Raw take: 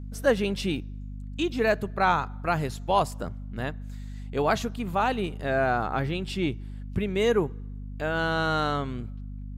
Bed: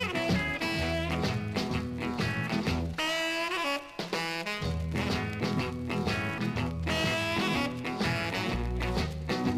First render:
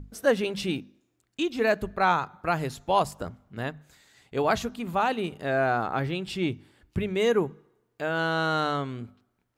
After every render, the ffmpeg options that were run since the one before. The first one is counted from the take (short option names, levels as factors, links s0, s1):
-af "bandreject=f=50:t=h:w=6,bandreject=f=100:t=h:w=6,bandreject=f=150:t=h:w=6,bandreject=f=200:t=h:w=6,bandreject=f=250:t=h:w=6"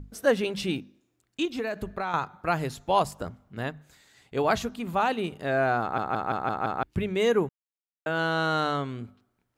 -filter_complex "[0:a]asettb=1/sr,asplit=3[s0][s1][s2];[s0]atrim=end=1.454[s3];[s1]atrim=start=1.45:end=2.14,asetpts=PTS-STARTPTS,afade=t=in:d=0.004:c=qsin,afade=t=out:st=0.686:d=0.004:c=qsin,acompressor=threshold=0.0501:ratio=10:attack=3.2:release=140:knee=1:detection=peak[s4];[s2]atrim=start=2.136[s5];[s3][s4]acrossfade=d=0.004:c1=hsin:c2=qsin[s6];[s6][s5]acrossfade=d=0.004:c1=qsin:c2=hsin,asplit=9[s7][s8][s9][s10][s11][s12][s13][s14][s15];[s7]atrim=end=5.982[s16];[s8]atrim=start=5.808:end=5.982[s17];[s9]atrim=start=5.808:end=5.982[s18];[s10]atrim=start=5.808:end=5.982[s19];[s11]atrim=start=5.808:end=5.982[s20];[s12]atrim=start=5.808:end=5.982[s21];[s13]atrim=start=6.828:end=7.49,asetpts=PTS-STARTPTS,afade=t=out:st=0.658:d=0.004:c=hsin[s22];[s14]atrim=start=7.49:end=8.06,asetpts=PTS-STARTPTS,volume=0[s23];[s15]atrim=start=8.06,asetpts=PTS-STARTPTS,afade=t=in:d=0.004:c=hsin[s24];[s16][s17]acrossfade=d=0.004:c1=hsin:c2=hsin[s25];[s25][s18]acrossfade=d=0.004:c1=hsin:c2=hsin[s26];[s26][s19]acrossfade=d=0.004:c1=hsin:c2=hsin[s27];[s27][s20]acrossfade=d=0.004:c1=hsin:c2=hsin[s28];[s28][s21]acrossfade=d=0.004:c1=hsin:c2=hsin[s29];[s22][s23][s24]concat=n=3:v=0:a=1[s30];[s29][s30]acrossfade=d=0.004:c1=hsin:c2=hsin"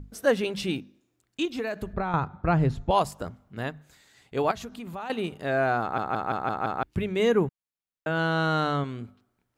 -filter_complex "[0:a]asettb=1/sr,asplit=3[s0][s1][s2];[s0]atrim=end=1.934[s3];[s1]atrim=start=1.93:end=2.91,asetpts=PTS-STARTPTS,afade=t=in:d=0.004:c=qsin,afade=t=out:st=0.976:d=0.004:c=qsin,aemphasis=mode=reproduction:type=riaa[s4];[s2]atrim=start=2.906[s5];[s3][s4]acrossfade=d=0.004:c1=hsin:c2=qsin[s6];[s6][s5]acrossfade=d=0.004:c1=qsin:c2=hsin,asettb=1/sr,asplit=3[s7][s8][s9];[s7]atrim=end=4.514[s10];[s8]atrim=start=4.51:end=5.1,asetpts=PTS-STARTPTS,afade=t=in:d=0.004:c=qsin,afade=t=out:st=0.586:d=0.004:c=qsin,acompressor=threshold=0.0158:ratio=3:attack=3.2:release=140:knee=1:detection=peak[s11];[s9]atrim=start=5.096[s12];[s10][s11]acrossfade=d=0.004:c1=hsin:c2=qsin[s13];[s13][s12]acrossfade=d=0.004:c1=qsin:c2=hsin,asettb=1/sr,asplit=3[s14][s15][s16];[s14]atrim=end=7.194[s17];[s15]atrim=start=7.19:end=8.84,asetpts=PTS-STARTPTS,afade=t=in:d=0.004:c=qsin,afade=t=out:st=1.646:d=0.004:c=qsin,bass=f=250:g=6,treble=f=4000:g=-3[s18];[s16]atrim=start=8.836[s19];[s17][s18]acrossfade=d=0.004:c1=hsin:c2=qsin[s20];[s20][s19]acrossfade=d=0.004:c1=qsin:c2=hsin"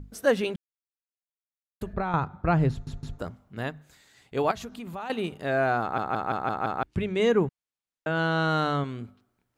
-filter_complex "[0:a]asettb=1/sr,asplit=3[s0][s1][s2];[s0]atrim=end=6.864[s3];[s1]atrim=start=6.86:end=8.49,asetpts=PTS-STARTPTS,afade=t=in:d=0.004:c=qsin,afade=t=out:st=1.626:d=0.004:c=qsin,lowpass=9100[s4];[s2]atrim=start=8.486[s5];[s3][s4]acrossfade=d=0.004:c1=hsin:c2=qsin[s6];[s6][s5]acrossfade=d=0.004:c1=qsin:c2=hsin,asplit=6[s7][s8][s9][s10][s11][s12];[s7]atrim=end=0.56,asetpts=PTS-STARTPTS,afade=t=out:st=0.556:d=0.004:c=hsin[s13];[s8]atrim=start=0.56:end=1.81,asetpts=PTS-STARTPTS,volume=0[s14];[s9]atrim=start=1.81:end=2.872,asetpts=PTS-STARTPTS,afade=t=in:d=0.004:c=hsin[s15];[s10]atrim=start=2.708:end=2.872[s16];[s11]atrim=start=2.708:end=2.872[s17];[s12]atrim=start=3.188[s18];[s13][s14][s15]concat=n=3:v=0:a=1[s19];[s19][s16]acrossfade=d=0.004:c1=hsin:c2=hsin[s20];[s20][s17]acrossfade=d=0.004:c1=hsin:c2=hsin[s21];[s21][s18]acrossfade=d=0.004:c1=hsin:c2=hsin"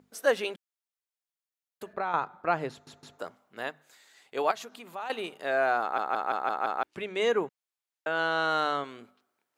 -af "highpass=470"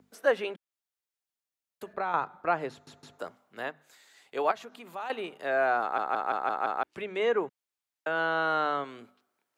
-filter_complex "[0:a]acrossover=split=250|1000|2900[s0][s1][s2][s3];[s0]alimiter=level_in=9.44:limit=0.0631:level=0:latency=1,volume=0.106[s4];[s3]acompressor=threshold=0.00224:ratio=6[s5];[s4][s1][s2][s5]amix=inputs=4:normalize=0"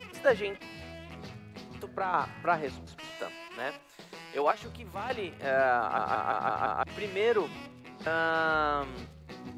-filter_complex "[1:a]volume=0.188[s0];[0:a][s0]amix=inputs=2:normalize=0"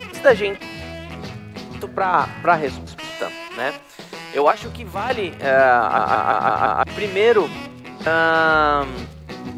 -af "volume=3.98,alimiter=limit=0.794:level=0:latency=1"